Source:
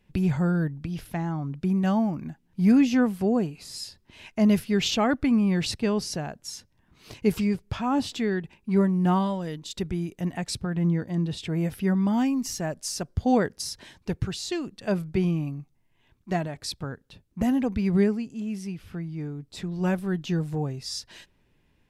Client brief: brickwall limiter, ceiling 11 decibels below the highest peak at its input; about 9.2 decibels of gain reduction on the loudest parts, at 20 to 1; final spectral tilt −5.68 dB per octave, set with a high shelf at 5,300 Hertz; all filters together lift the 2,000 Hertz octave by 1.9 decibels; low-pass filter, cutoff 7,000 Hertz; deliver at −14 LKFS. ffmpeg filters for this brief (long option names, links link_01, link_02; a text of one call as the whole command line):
ffmpeg -i in.wav -af "lowpass=7000,equalizer=frequency=2000:width_type=o:gain=3.5,highshelf=frequency=5300:gain=-7.5,acompressor=threshold=-24dB:ratio=20,volume=21dB,alimiter=limit=-5dB:level=0:latency=1" out.wav